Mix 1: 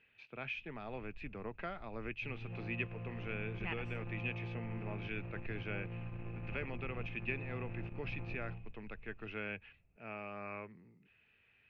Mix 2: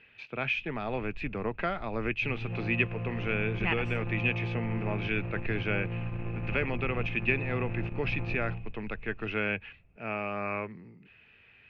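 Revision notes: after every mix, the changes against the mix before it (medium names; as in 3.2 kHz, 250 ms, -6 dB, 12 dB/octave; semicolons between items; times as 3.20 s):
speech +11.5 dB; background +9.5 dB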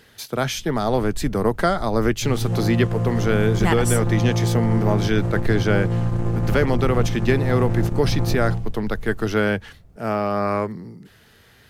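master: remove four-pole ladder low-pass 2.6 kHz, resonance 90%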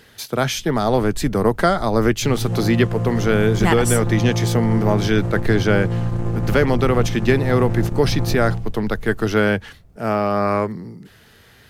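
speech +3.0 dB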